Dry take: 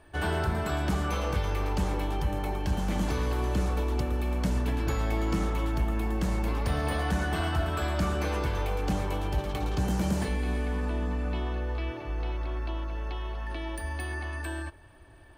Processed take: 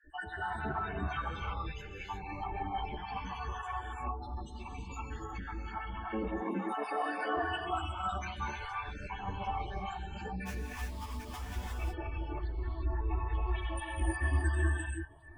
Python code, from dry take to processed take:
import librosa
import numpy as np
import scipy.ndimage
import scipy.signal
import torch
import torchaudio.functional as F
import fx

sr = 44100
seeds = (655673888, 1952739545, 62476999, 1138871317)

y = fx.spec_dropout(x, sr, seeds[0], share_pct=58)
y = fx.highpass(y, sr, hz=250.0, slope=24, at=(6.09, 7.37))
y = fx.over_compress(y, sr, threshold_db=-34.0, ratio=-0.5)
y = fx.spec_topn(y, sr, count=16)
y = fx.cheby_harmonics(y, sr, harmonics=(3,), levels_db=(-30,), full_scale_db=-22.0)
y = fx.sample_hold(y, sr, seeds[1], rate_hz=4200.0, jitter_pct=20, at=(10.45, 11.56), fade=0.02)
y = fx.rev_gated(y, sr, seeds[2], gate_ms=380, shape='rising', drr_db=-2.0)
y = fx.ensemble(y, sr)